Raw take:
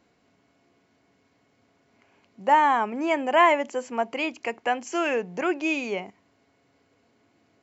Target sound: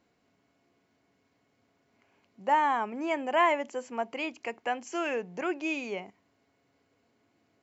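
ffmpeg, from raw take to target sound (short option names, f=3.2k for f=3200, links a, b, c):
-af "volume=-6dB"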